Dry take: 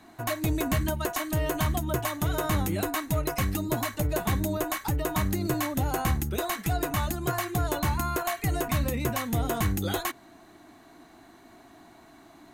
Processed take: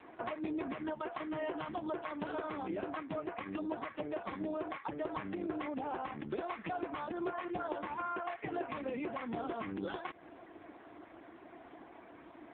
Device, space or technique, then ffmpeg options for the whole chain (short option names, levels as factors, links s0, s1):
voicemail: -filter_complex "[0:a]asettb=1/sr,asplit=3[s0][s1][s2];[s0]atrim=end=0.984[s3];[s1]atrim=start=0.98:end=2.17,asetpts=PTS-STARTPTS,afade=t=in:d=0.004:c=qsin,afade=t=out:st=1.186:d=0.004:c=qsin,highpass=50[s4];[s2]atrim=start=2.166[s5];[s3][s4]acrossfade=d=0.004:c1=hsin:c2=qsin[s6];[s6][s5]acrossfade=d=0.004:c1=qsin:c2=hsin,highpass=300,lowpass=3000,equalizer=f=320:w=1.5:g=2,acompressor=threshold=0.0158:ratio=12,volume=1.41" -ar 8000 -c:a libopencore_amrnb -b:a 5150